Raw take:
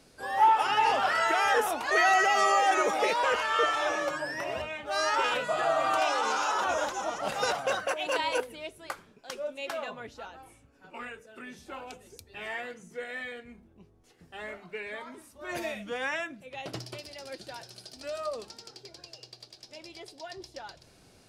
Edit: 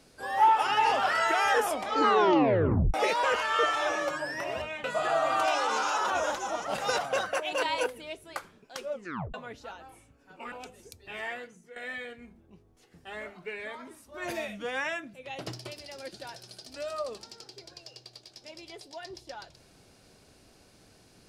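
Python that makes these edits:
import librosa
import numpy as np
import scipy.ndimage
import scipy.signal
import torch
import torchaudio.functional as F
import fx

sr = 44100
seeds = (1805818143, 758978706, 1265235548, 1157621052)

y = fx.edit(x, sr, fx.tape_stop(start_s=1.61, length_s=1.33),
    fx.cut(start_s=4.84, length_s=0.54),
    fx.tape_stop(start_s=9.46, length_s=0.42),
    fx.cut(start_s=11.06, length_s=0.73),
    fx.fade_out_to(start_s=12.58, length_s=0.45, floor_db=-14.0), tone=tone)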